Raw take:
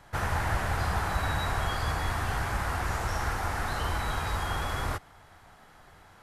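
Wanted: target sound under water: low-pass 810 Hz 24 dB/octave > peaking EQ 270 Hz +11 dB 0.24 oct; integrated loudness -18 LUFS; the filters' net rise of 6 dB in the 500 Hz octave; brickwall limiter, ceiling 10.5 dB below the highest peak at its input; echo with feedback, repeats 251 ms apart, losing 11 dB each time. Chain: peaking EQ 500 Hz +8 dB; peak limiter -24.5 dBFS; low-pass 810 Hz 24 dB/octave; peaking EQ 270 Hz +11 dB 0.24 oct; feedback delay 251 ms, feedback 28%, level -11 dB; trim +18 dB

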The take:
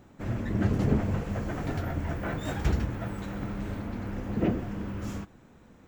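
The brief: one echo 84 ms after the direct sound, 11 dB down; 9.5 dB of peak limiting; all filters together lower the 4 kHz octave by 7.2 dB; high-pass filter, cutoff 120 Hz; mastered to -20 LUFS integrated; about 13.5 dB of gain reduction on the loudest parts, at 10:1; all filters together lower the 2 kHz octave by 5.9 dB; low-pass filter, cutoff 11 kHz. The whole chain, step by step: high-pass 120 Hz; low-pass 11 kHz; peaking EQ 2 kHz -6.5 dB; peaking EQ 4 kHz -7 dB; compression 10:1, threshold -34 dBFS; peak limiter -35.5 dBFS; delay 84 ms -11 dB; trim +23.5 dB

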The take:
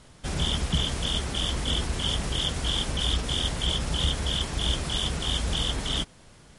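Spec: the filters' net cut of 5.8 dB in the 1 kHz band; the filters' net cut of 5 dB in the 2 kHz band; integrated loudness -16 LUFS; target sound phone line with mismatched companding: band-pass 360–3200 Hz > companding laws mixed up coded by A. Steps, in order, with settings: band-pass 360–3200 Hz; peaking EQ 1 kHz -6.5 dB; peaking EQ 2 kHz -3.5 dB; companding laws mixed up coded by A; trim +19.5 dB

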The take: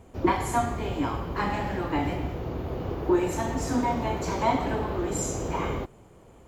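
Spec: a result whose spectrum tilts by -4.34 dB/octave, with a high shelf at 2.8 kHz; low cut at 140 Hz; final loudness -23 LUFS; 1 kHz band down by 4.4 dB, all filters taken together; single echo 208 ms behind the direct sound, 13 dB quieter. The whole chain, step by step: high-pass 140 Hz; peaking EQ 1 kHz -4.5 dB; treble shelf 2.8 kHz -8.5 dB; delay 208 ms -13 dB; trim +7.5 dB

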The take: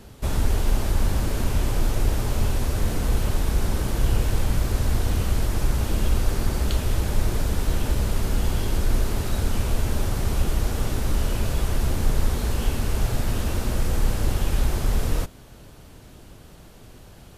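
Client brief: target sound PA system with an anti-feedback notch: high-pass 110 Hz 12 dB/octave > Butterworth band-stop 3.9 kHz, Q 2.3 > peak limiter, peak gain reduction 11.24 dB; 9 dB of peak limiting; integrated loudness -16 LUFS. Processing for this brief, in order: peak limiter -17 dBFS; high-pass 110 Hz 12 dB/octave; Butterworth band-stop 3.9 kHz, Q 2.3; trim +23 dB; peak limiter -7 dBFS

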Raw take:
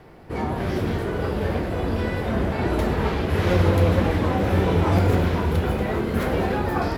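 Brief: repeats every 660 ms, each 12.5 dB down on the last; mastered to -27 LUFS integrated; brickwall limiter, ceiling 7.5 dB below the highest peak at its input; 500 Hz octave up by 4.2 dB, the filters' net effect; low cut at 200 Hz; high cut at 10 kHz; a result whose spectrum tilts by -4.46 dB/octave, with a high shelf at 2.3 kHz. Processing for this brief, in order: high-pass 200 Hz; low-pass 10 kHz; peaking EQ 500 Hz +5 dB; treble shelf 2.3 kHz +4.5 dB; peak limiter -15 dBFS; feedback delay 660 ms, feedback 24%, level -12.5 dB; trim -2.5 dB

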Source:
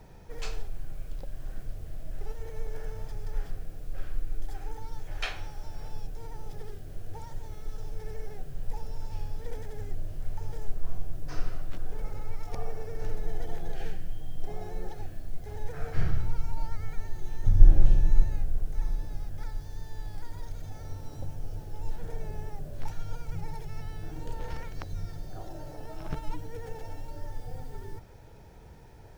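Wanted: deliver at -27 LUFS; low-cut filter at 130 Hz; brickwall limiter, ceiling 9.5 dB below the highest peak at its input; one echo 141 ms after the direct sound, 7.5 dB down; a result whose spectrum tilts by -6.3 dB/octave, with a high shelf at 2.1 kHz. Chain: high-pass 130 Hz; treble shelf 2.1 kHz -7 dB; peak limiter -31.5 dBFS; delay 141 ms -7.5 dB; trim +19 dB

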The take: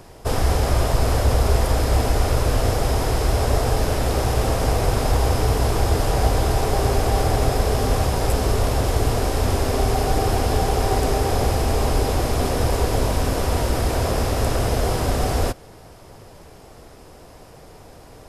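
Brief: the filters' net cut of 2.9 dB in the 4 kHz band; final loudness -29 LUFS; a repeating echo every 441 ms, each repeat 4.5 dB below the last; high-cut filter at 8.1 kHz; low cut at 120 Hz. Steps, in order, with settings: high-pass 120 Hz; low-pass 8.1 kHz; peaking EQ 4 kHz -3.5 dB; feedback delay 441 ms, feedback 60%, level -4.5 dB; trim -7 dB

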